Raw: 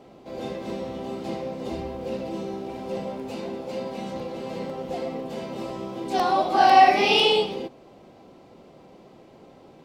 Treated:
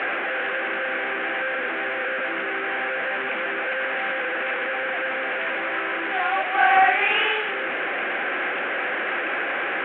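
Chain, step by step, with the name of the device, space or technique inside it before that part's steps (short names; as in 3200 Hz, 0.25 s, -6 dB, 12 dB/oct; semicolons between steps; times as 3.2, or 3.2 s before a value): digital answering machine (BPF 390–3400 Hz; delta modulation 16 kbps, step -20 dBFS; speaker cabinet 440–3100 Hz, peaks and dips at 440 Hz -6 dB, 650 Hz -6 dB, 950 Hz -8 dB, 1600 Hz +9 dB, 2300 Hz +4 dB); gain +2 dB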